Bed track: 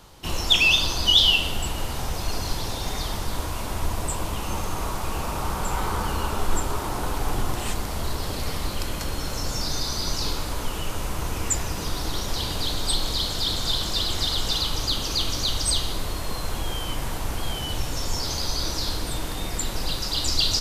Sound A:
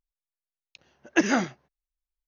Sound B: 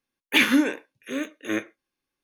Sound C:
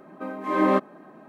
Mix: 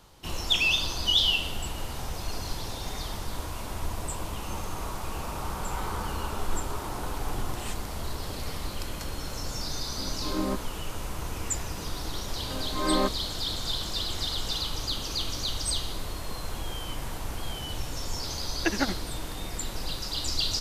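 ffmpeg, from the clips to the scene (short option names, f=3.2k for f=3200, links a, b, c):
-filter_complex "[3:a]asplit=2[a][b];[0:a]volume=-6dB[c];[a]aemphasis=mode=reproduction:type=riaa[d];[1:a]tremolo=f=12:d=0.89[e];[d]atrim=end=1.28,asetpts=PTS-STARTPTS,volume=-14dB,afade=t=in:d=0.004:c=hsin,afade=t=out:st=1.276:d=0.004:c=hsin,adelay=9770[f];[b]atrim=end=1.28,asetpts=PTS-STARTPTS,volume=-5.5dB,afade=t=in:d=0.004:c=hsin,afade=t=out:st=1.276:d=0.004:c=hsin,adelay=12290[g];[e]atrim=end=2.27,asetpts=PTS-STARTPTS,volume=-2dB,afade=t=in:d=0.004:c=hsin,afade=t=out:st=2.266:d=0.004:c=hsin,adelay=17490[h];[c][f][g][h]amix=inputs=4:normalize=0"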